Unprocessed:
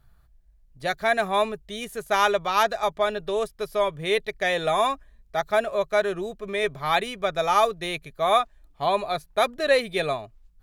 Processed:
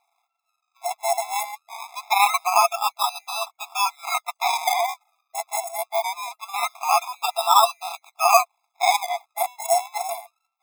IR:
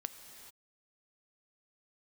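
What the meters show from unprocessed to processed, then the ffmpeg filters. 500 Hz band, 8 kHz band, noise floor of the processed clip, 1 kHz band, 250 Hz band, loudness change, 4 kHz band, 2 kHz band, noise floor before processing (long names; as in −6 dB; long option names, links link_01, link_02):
−5.0 dB, +12.5 dB, −79 dBFS, +4.5 dB, below −40 dB, +2.0 dB, +2.0 dB, −1.0 dB, −58 dBFS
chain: -af "acrusher=samples=28:mix=1:aa=0.000001:lfo=1:lforange=16.8:lforate=0.23,afftfilt=real='re*eq(mod(floor(b*sr/1024/680),2),1)':imag='im*eq(mod(floor(b*sr/1024/680),2),1)':win_size=1024:overlap=0.75,volume=6dB"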